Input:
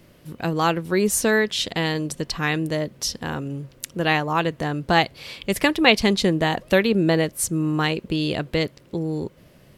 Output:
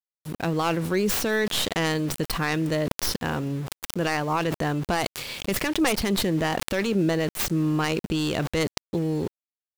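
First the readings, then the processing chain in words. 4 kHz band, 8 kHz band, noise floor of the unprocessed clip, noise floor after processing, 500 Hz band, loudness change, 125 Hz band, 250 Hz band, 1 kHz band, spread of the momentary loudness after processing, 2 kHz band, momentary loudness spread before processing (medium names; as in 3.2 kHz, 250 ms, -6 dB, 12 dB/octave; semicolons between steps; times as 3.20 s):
-4.0 dB, -3.5 dB, -53 dBFS, under -85 dBFS, -4.0 dB, -3.5 dB, -1.5 dB, -2.5 dB, -4.0 dB, 6 LU, -5.0 dB, 11 LU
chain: tracing distortion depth 0.27 ms; in parallel at +0.5 dB: compression 8:1, threshold -27 dBFS, peak gain reduction 17 dB; on the sum: peak limiter -11 dBFS, peak gain reduction 10.5 dB; small samples zeroed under -34 dBFS; decay stretcher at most 45 dB/s; trim -4 dB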